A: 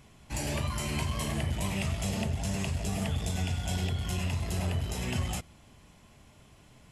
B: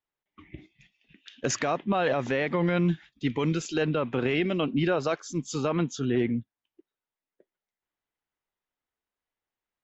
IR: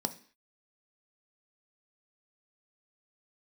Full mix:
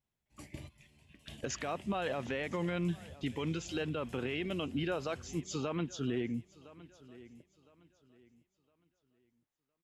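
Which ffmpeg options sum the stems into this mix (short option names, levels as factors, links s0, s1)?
-filter_complex "[0:a]equalizer=f=1200:w=1.9:g=-9,volume=0.141,asplit=2[s0][s1];[s1]volume=0.237[s2];[1:a]adynamicequalizer=threshold=0.00316:dfrequency=3000:dqfactor=2.5:tfrequency=3000:tqfactor=2.5:attack=5:release=100:ratio=0.375:range=2.5:mode=boostabove:tftype=bell,volume=0.631,asplit=3[s3][s4][s5];[s4]volume=0.0631[s6];[s5]apad=whole_len=304833[s7];[s0][s7]sidechaingate=range=0.141:threshold=0.00178:ratio=16:detection=peak[s8];[s2][s6]amix=inputs=2:normalize=0,aecho=0:1:1011|2022|3033|4044:1|0.29|0.0841|0.0244[s9];[s8][s3][s9]amix=inputs=3:normalize=0,alimiter=level_in=1.19:limit=0.0631:level=0:latency=1:release=478,volume=0.841"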